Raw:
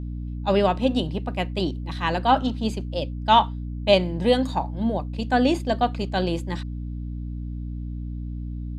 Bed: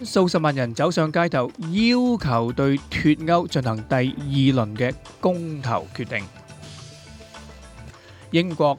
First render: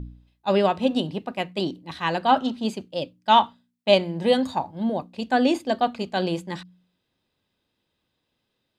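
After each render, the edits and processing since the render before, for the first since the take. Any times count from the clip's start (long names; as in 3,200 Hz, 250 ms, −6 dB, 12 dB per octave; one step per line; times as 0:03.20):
hum removal 60 Hz, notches 5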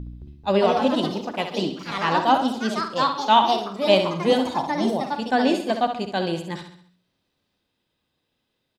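repeating echo 67 ms, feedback 47%, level −8 dB
delay with pitch and tempo change per echo 218 ms, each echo +3 semitones, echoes 3, each echo −6 dB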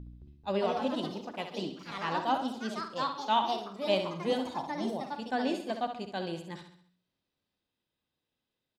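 level −11 dB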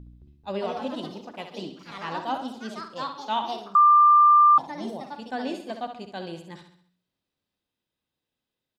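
0:03.75–0:04.58: beep over 1,190 Hz −12 dBFS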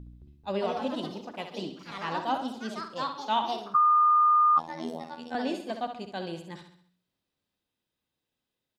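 0:03.74–0:05.35: phases set to zero 81.1 Hz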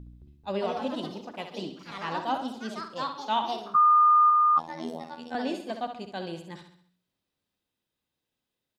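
0:03.62–0:04.30: double-tracking delay 18 ms −8 dB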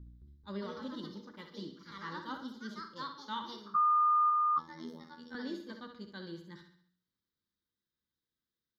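phaser with its sweep stopped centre 2,600 Hz, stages 6
tuned comb filter 68 Hz, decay 0.29 s, harmonics odd, mix 60%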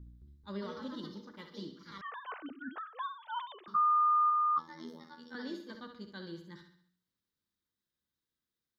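0:02.01–0:03.68: three sine waves on the formant tracks
0:04.33–0:05.75: high-pass filter 180 Hz 6 dB per octave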